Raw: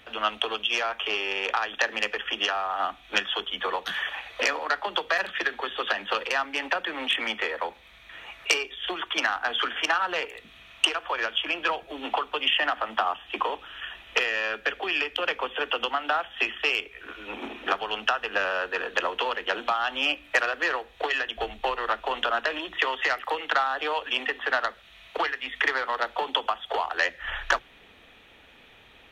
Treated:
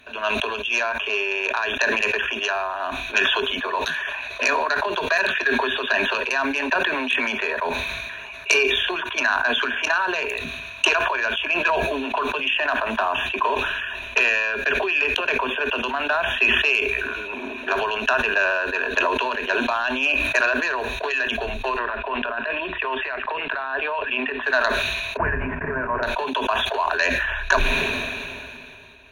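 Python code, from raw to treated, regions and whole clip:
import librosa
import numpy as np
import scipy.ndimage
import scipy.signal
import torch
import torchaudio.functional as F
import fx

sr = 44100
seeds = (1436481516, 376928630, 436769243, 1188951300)

y = fx.chain(x, sr, fx.lowpass(hz=3100.0, slope=24),
    fx.over_compress(threshold_db=-29.0, ratio=-1.0), at=(21.79, 24.43))
y = fx.chain(y, sr, fx.cvsd(bps=16000),
    fx.lowpass(hz=1900.0, slope=24),
    fx.low_shelf(hz=260.0, db=11.0), at=(25.17, 26.03))
y = fx.ripple_eq(y, sr, per_octave=1.5, db=14)
y = fx.sustainer(y, sr, db_per_s=23.0)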